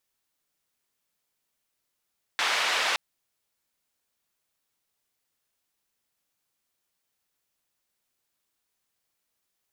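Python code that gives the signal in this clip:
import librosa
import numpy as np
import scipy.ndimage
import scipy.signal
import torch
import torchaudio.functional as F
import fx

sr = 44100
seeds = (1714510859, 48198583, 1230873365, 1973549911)

y = fx.band_noise(sr, seeds[0], length_s=0.57, low_hz=710.0, high_hz=3100.0, level_db=-26.0)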